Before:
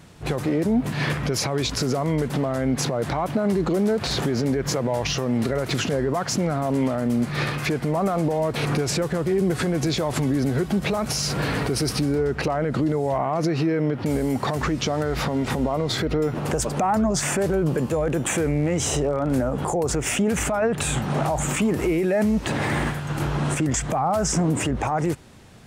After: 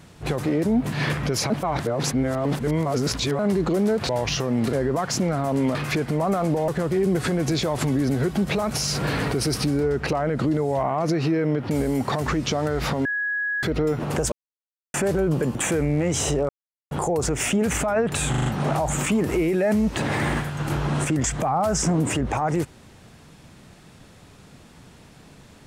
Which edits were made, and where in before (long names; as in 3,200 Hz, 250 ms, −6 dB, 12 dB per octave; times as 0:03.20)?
0:01.50–0:03.39: reverse
0:04.09–0:04.87: remove
0:05.51–0:05.91: remove
0:06.93–0:07.49: remove
0:08.42–0:09.03: remove
0:15.40–0:15.98: beep over 1,670 Hz −22.5 dBFS
0:16.67–0:17.29: silence
0:17.90–0:18.21: remove
0:19.15–0:19.57: silence
0:20.96: stutter 0.04 s, 5 plays